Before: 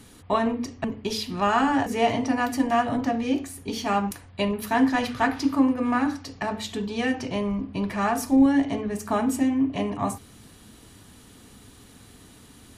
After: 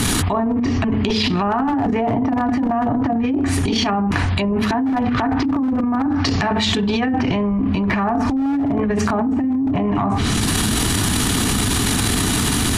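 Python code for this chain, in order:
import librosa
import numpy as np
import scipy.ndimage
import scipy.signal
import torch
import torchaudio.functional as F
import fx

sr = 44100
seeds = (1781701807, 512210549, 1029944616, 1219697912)

y = fx.env_lowpass_down(x, sr, base_hz=830.0, full_db=-20.5)
y = fx.peak_eq(y, sr, hz=520.0, db=-10.0, octaves=0.46)
y = fx.transient(y, sr, attack_db=-10, sustain_db=12)
y = np.clip(10.0 ** (17.5 / 20.0) * y, -1.0, 1.0) / 10.0 ** (17.5 / 20.0)
y = fx.env_flatten(y, sr, amount_pct=100)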